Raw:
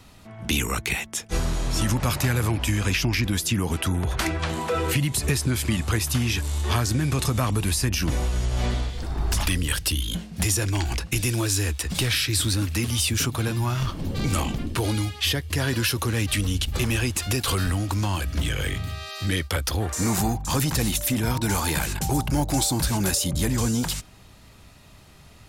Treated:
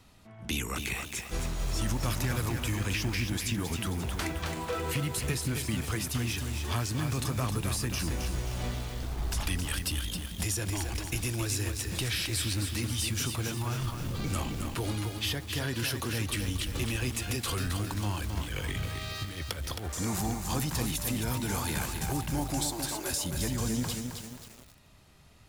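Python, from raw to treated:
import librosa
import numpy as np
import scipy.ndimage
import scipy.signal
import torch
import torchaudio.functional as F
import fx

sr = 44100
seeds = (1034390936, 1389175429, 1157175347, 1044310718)

y = fx.over_compress(x, sr, threshold_db=-28.0, ratio=-0.5, at=(18.41, 19.83), fade=0.02)
y = fx.steep_highpass(y, sr, hz=290.0, slope=48, at=(22.6, 23.11))
y = fx.echo_crushed(y, sr, ms=267, feedback_pct=55, bits=6, wet_db=-5)
y = y * 10.0 ** (-8.5 / 20.0)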